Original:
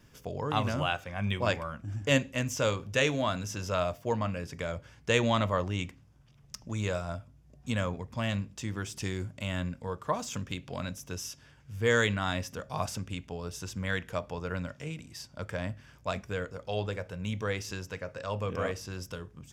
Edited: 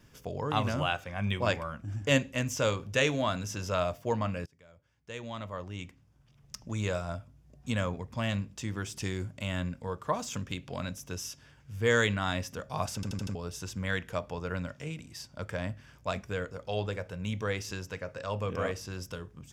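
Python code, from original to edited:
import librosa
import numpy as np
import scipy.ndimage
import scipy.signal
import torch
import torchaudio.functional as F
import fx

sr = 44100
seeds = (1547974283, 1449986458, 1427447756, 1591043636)

y = fx.edit(x, sr, fx.fade_in_from(start_s=4.46, length_s=2.11, curve='qua', floor_db=-24.0),
    fx.stutter_over(start_s=12.95, slice_s=0.08, count=5), tone=tone)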